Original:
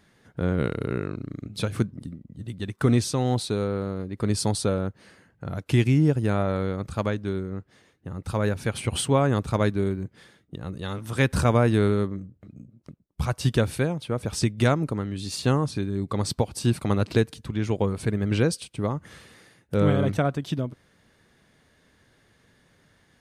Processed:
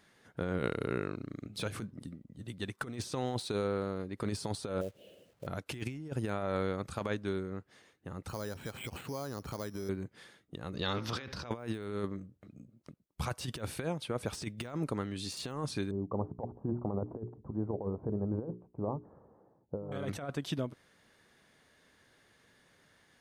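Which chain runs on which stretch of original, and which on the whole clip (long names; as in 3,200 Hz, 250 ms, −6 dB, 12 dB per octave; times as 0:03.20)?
0:04.81–0:05.47: drawn EQ curve 180 Hz 0 dB, 270 Hz −1 dB, 590 Hz +10 dB, 1,000 Hz −22 dB, 2,000 Hz −21 dB, 2,900 Hz +5 dB, 5,100 Hz −22 dB + downward compressor 2 to 1, threshold −33 dBFS + log-companded quantiser 6 bits
0:08.28–0:09.89: bad sample-rate conversion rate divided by 8×, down filtered, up hold + downward compressor 12 to 1, threshold −28 dBFS
0:10.74–0:11.51: high shelf with overshoot 6,700 Hz −11 dB, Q 3 + compressor whose output falls as the input rises −32 dBFS + hum removal 127.3 Hz, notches 18
0:15.91–0:19.92: Butterworth low-pass 970 Hz + mains-hum notches 60/120/180/240/300/360/420 Hz
whole clip: de-essing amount 80%; low-shelf EQ 240 Hz −9.5 dB; compressor whose output falls as the input rises −29 dBFS, ratio −0.5; level −4.5 dB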